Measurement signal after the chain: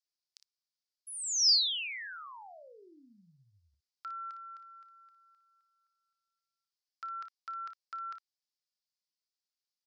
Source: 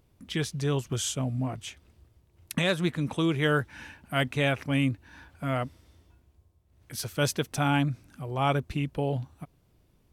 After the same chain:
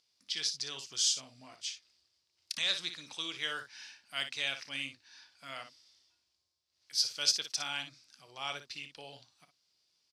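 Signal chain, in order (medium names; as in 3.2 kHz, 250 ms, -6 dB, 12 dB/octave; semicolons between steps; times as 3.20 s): resonant low-pass 4.9 kHz, resonance Q 4.3; differentiator; early reflections 30 ms -16.5 dB, 58 ms -9.5 dB; trim +2 dB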